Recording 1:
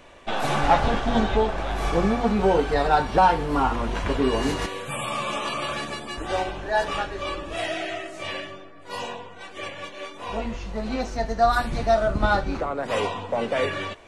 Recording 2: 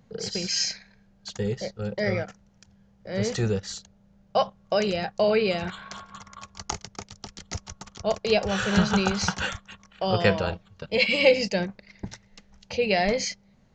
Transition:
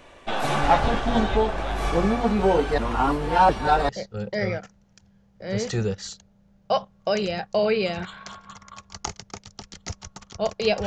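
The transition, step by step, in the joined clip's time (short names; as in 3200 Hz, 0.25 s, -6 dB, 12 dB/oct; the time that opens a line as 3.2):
recording 1
2.78–3.89 reverse
3.89 switch to recording 2 from 1.54 s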